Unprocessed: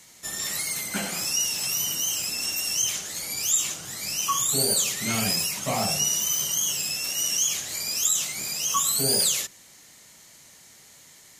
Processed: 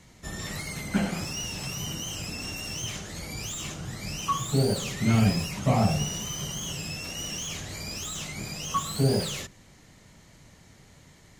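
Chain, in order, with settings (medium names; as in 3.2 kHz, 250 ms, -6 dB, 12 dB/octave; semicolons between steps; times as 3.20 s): RIAA curve playback; slew-rate limiter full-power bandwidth 130 Hz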